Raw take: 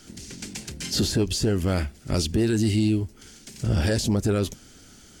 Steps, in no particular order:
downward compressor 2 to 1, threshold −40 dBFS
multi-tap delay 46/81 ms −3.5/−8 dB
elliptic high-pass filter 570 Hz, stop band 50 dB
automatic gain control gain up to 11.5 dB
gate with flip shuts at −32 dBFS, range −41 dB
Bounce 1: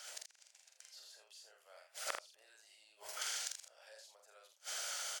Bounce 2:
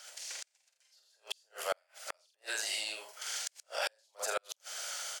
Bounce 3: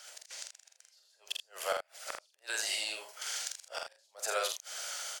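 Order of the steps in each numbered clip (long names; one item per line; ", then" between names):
elliptic high-pass filter, then gate with flip, then multi-tap delay, then automatic gain control, then downward compressor
multi-tap delay, then downward compressor, then elliptic high-pass filter, then gate with flip, then automatic gain control
downward compressor, then elliptic high-pass filter, then gate with flip, then automatic gain control, then multi-tap delay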